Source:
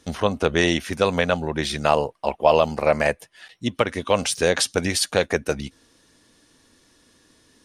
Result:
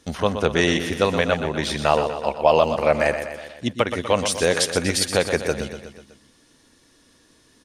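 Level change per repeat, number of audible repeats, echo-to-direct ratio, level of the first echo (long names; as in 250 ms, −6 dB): −5.0 dB, 5, −7.5 dB, −9.0 dB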